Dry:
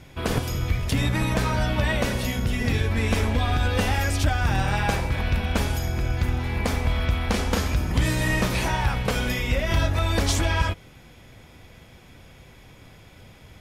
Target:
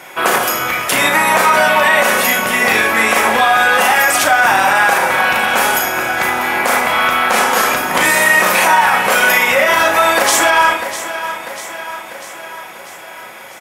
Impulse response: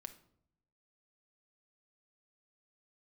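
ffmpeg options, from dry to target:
-filter_complex "[0:a]highpass=860,equalizer=f=4200:w=0.72:g=-12.5,asplit=2[s0][s1];[s1]adelay=37,volume=0.447[s2];[s0][s2]amix=inputs=2:normalize=0,aecho=1:1:645|1290|1935|2580|3225|3870:0.178|0.103|0.0598|0.0347|0.0201|0.0117[s3];[1:a]atrim=start_sample=2205[s4];[s3][s4]afir=irnorm=-1:irlink=0,alimiter=level_in=31.6:limit=0.891:release=50:level=0:latency=1,volume=0.891"

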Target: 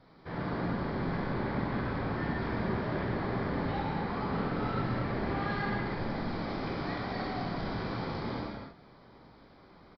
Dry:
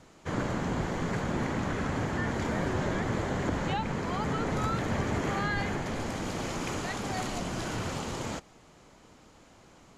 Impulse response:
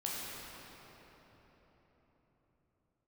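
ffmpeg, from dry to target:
-filter_complex "[0:a]equalizer=f=2800:t=o:w=0.24:g=-14,aresample=11025,asoftclip=type=tanh:threshold=0.0398,aresample=44100[s0];[1:a]atrim=start_sample=2205,afade=t=out:st=0.39:d=0.01,atrim=end_sample=17640[s1];[s0][s1]afir=irnorm=-1:irlink=0,volume=0.794"

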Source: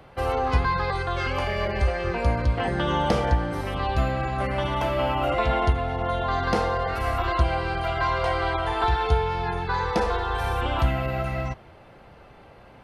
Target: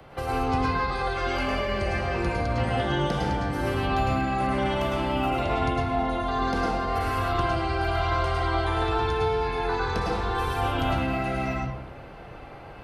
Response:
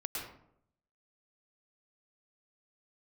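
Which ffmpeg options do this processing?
-filter_complex "[0:a]acrossover=split=120|260|4100[s0][s1][s2][s3];[s0]acompressor=threshold=0.0126:ratio=4[s4];[s1]acompressor=threshold=0.0158:ratio=4[s5];[s2]acompressor=threshold=0.0224:ratio=4[s6];[s3]acompressor=threshold=0.00447:ratio=4[s7];[s4][s5][s6][s7]amix=inputs=4:normalize=0[s8];[1:a]atrim=start_sample=2205[s9];[s8][s9]afir=irnorm=-1:irlink=0,volume=1.58"

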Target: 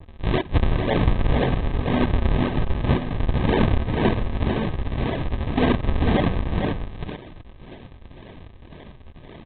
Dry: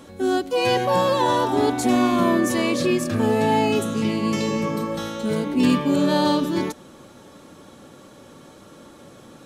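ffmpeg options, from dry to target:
-af "aexciter=amount=14.6:drive=6.8:freq=2800,acompressor=threshold=0.355:ratio=2.5,aresample=8000,acrusher=samples=30:mix=1:aa=0.000001:lfo=1:lforange=48:lforate=1.9,aresample=44100,asuperstop=centerf=1400:order=12:qfactor=6.5,aecho=1:1:447:0.501,adynamicequalizer=threshold=0.0126:dfrequency=2300:dqfactor=0.7:tfrequency=2300:tqfactor=0.7:attack=5:release=100:ratio=0.375:range=2.5:mode=cutabove:tftype=highshelf,volume=0.75"

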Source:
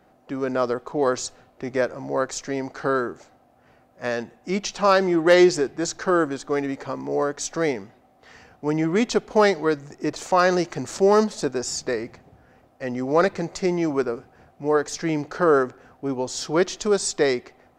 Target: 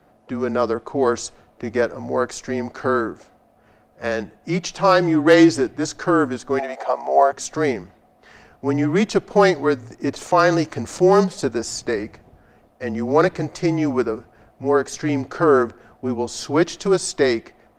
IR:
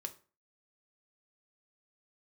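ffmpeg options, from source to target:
-filter_complex "[0:a]asplit=3[s0][s1][s2];[s0]afade=t=out:st=6.58:d=0.02[s3];[s1]highpass=f=710:t=q:w=6.1,afade=t=in:st=6.58:d=0.02,afade=t=out:st=7.31:d=0.02[s4];[s2]afade=t=in:st=7.31:d=0.02[s5];[s3][s4][s5]amix=inputs=3:normalize=0,afreqshift=-28,volume=1.41" -ar 48000 -c:a libopus -b:a 32k

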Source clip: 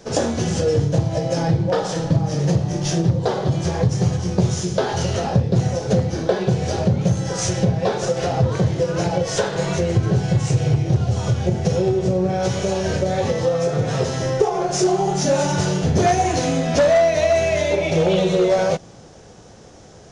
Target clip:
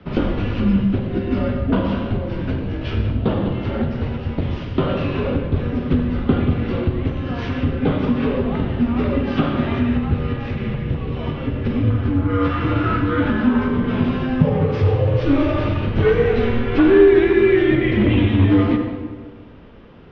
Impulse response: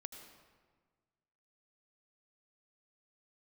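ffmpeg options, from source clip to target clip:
-filter_complex "[0:a]asettb=1/sr,asplit=3[s0][s1][s2];[s0]atrim=end=11.904[s3];[s1]atrim=start=11.9:end=13.69,asetpts=PTS-STARTPTS,afade=t=in:d=0.004:c=qsin,afade=t=out:st=1.786:d=0.004:c=qsin,equalizer=f=1600:t=o:w=0.51:g=11.5[s4];[s2]atrim=start=13.686[s5];[s3][s4]acrossfade=d=0.004:c1=hsin:c2=qsin[s6];[s6][s5]acrossfade=d=0.004:c1=qsin:c2=hsin[s7];[1:a]atrim=start_sample=2205[s8];[s7][s8]afir=irnorm=-1:irlink=0,highpass=f=190:t=q:w=0.5412,highpass=f=190:t=q:w=1.307,lowpass=f=3400:t=q:w=0.5176,lowpass=f=3400:t=q:w=0.7071,lowpass=f=3400:t=q:w=1.932,afreqshift=-270,volume=2.24"

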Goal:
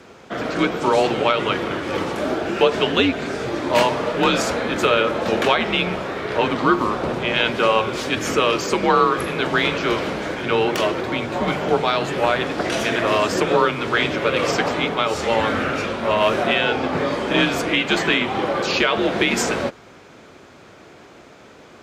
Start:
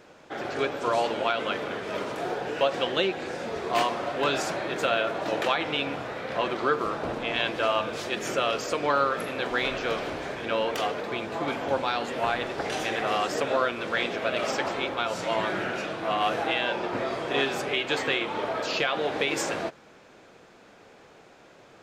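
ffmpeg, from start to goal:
-af "afreqshift=-100,highpass=72,volume=2.51"

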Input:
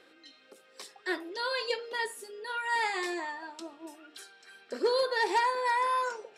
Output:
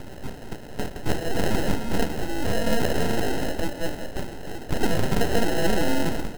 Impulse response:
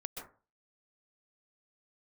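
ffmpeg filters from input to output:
-filter_complex "[0:a]acompressor=threshold=0.0126:ratio=3,acrusher=samples=38:mix=1:aa=0.000001,aeval=exprs='abs(val(0))':c=same,aeval=exprs='0.0398*(cos(1*acos(clip(val(0)/0.0398,-1,1)))-cos(1*PI/2))+0.00562*(cos(4*acos(clip(val(0)/0.0398,-1,1)))-cos(4*PI/2))':c=same,aecho=1:1:193:0.158,asplit=2[s0][s1];[1:a]atrim=start_sample=2205[s2];[s1][s2]afir=irnorm=-1:irlink=0,volume=0.355[s3];[s0][s3]amix=inputs=2:normalize=0,alimiter=level_in=31.6:limit=0.891:release=50:level=0:latency=1,volume=0.398"

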